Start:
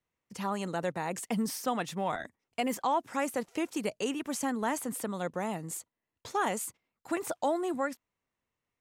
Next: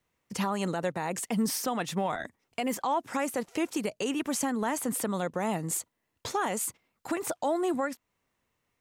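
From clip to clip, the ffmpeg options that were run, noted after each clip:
-af "alimiter=level_in=1.68:limit=0.0631:level=0:latency=1:release=287,volume=0.596,volume=2.66"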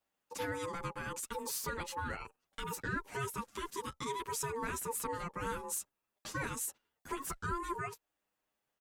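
-filter_complex "[0:a]crystalizer=i=0.5:c=0,aeval=exprs='val(0)*sin(2*PI*690*n/s)':c=same,asplit=2[s0][s1];[s1]adelay=8.4,afreqshift=0.4[s2];[s0][s2]amix=inputs=2:normalize=1,volume=0.708"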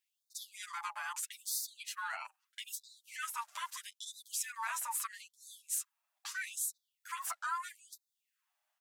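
-af "afftfilt=real='re*gte(b*sr/1024,570*pow(3600/570,0.5+0.5*sin(2*PI*0.78*pts/sr)))':imag='im*gte(b*sr/1024,570*pow(3600/570,0.5+0.5*sin(2*PI*0.78*pts/sr)))':win_size=1024:overlap=0.75,volume=1.33"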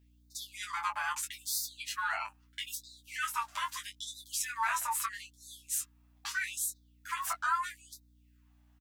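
-filter_complex "[0:a]equalizer=f=9900:t=o:w=1.6:g=-5.5,aeval=exprs='val(0)+0.000316*(sin(2*PI*60*n/s)+sin(2*PI*2*60*n/s)/2+sin(2*PI*3*60*n/s)/3+sin(2*PI*4*60*n/s)/4+sin(2*PI*5*60*n/s)/5)':c=same,asplit=2[s0][s1];[s1]adelay=20,volume=0.473[s2];[s0][s2]amix=inputs=2:normalize=0,volume=2"

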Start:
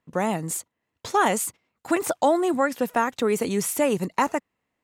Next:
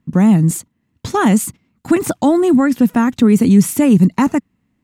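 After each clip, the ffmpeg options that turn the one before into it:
-filter_complex "[0:a]lowshelf=f=340:t=q:w=1.5:g=13.5,asplit=2[s0][s1];[s1]alimiter=limit=0.237:level=0:latency=1:release=37,volume=0.75[s2];[s0][s2]amix=inputs=2:normalize=0"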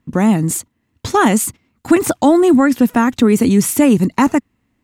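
-af "equalizer=f=170:w=1.7:g=-9.5,volume=1.5"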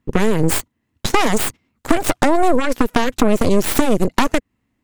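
-af "acompressor=threshold=0.158:ratio=8,aeval=exprs='0.447*(cos(1*acos(clip(val(0)/0.447,-1,1)))-cos(1*PI/2))+0.112*(cos(3*acos(clip(val(0)/0.447,-1,1)))-cos(3*PI/2))+0.01*(cos(5*acos(clip(val(0)/0.447,-1,1)))-cos(5*PI/2))+0.1*(cos(6*acos(clip(val(0)/0.447,-1,1)))-cos(6*PI/2))+0.00282*(cos(7*acos(clip(val(0)/0.447,-1,1)))-cos(7*PI/2))':c=same,volume=1.88"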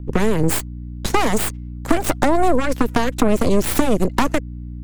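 -filter_complex "[0:a]aeval=exprs='val(0)+0.0398*(sin(2*PI*60*n/s)+sin(2*PI*2*60*n/s)/2+sin(2*PI*3*60*n/s)/3+sin(2*PI*4*60*n/s)/4+sin(2*PI*5*60*n/s)/5)':c=same,acrossover=split=390|1700|7700[s0][s1][s2][s3];[s2]aeval=exprs='clip(val(0),-1,0.0335)':c=same[s4];[s0][s1][s4][s3]amix=inputs=4:normalize=0,volume=0.841"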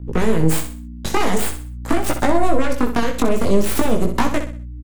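-filter_complex "[0:a]flanger=delay=17:depth=4.4:speed=0.47,asplit=2[s0][s1];[s1]aecho=0:1:63|126|189|252:0.355|0.124|0.0435|0.0152[s2];[s0][s2]amix=inputs=2:normalize=0,volume=1.19"

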